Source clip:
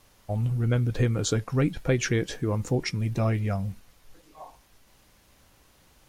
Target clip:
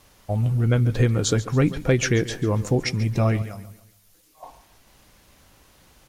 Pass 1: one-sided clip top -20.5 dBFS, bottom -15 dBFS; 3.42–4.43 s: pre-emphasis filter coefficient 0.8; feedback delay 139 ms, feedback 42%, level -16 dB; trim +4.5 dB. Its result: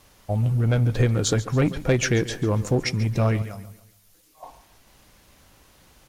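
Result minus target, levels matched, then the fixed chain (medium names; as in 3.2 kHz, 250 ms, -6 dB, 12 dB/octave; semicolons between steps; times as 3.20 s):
one-sided clip: distortion +4 dB
one-sided clip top -14.5 dBFS, bottom -15 dBFS; 3.42–4.43 s: pre-emphasis filter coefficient 0.8; feedback delay 139 ms, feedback 42%, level -16 dB; trim +4.5 dB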